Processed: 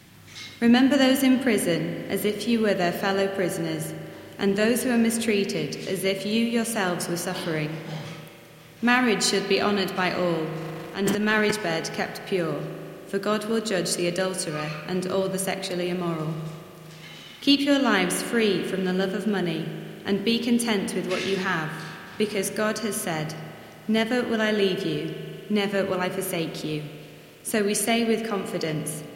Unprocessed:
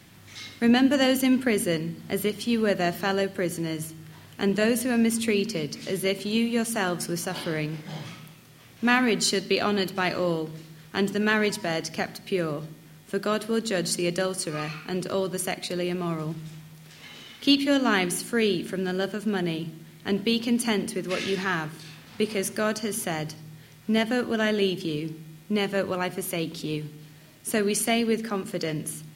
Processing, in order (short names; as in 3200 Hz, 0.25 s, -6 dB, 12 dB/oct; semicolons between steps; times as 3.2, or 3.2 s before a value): spring tank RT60 3.2 s, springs 38 ms, chirp 65 ms, DRR 7.5 dB; 10.57–11.51 transient shaper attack -7 dB, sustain +10 dB; gain +1 dB